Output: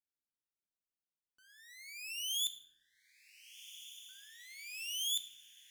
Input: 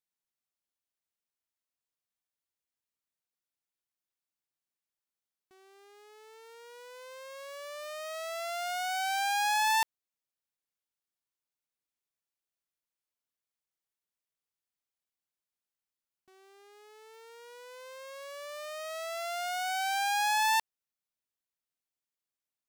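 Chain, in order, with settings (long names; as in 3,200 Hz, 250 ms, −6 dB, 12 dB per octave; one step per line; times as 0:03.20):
change of speed 3.98×
low shelf with overshoot 470 Hz +6 dB, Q 1.5
feedback delay with all-pass diffusion 1,523 ms, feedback 59%, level −13.5 dB
rectangular room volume 290 cubic metres, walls mixed, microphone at 0.41 metres
level −6.5 dB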